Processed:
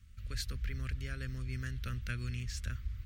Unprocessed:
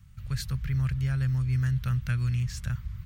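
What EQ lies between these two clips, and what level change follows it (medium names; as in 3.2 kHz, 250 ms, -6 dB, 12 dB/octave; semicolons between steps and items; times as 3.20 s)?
treble shelf 8 kHz -7.5 dB; static phaser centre 350 Hz, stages 4; 0.0 dB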